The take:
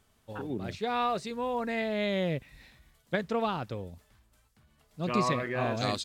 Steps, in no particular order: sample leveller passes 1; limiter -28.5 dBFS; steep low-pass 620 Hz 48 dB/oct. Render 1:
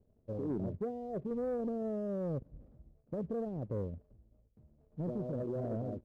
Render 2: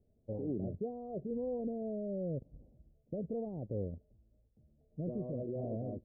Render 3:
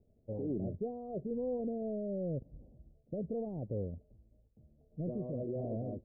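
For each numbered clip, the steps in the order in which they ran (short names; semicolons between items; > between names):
limiter > steep low-pass > sample leveller; sample leveller > limiter > steep low-pass; limiter > sample leveller > steep low-pass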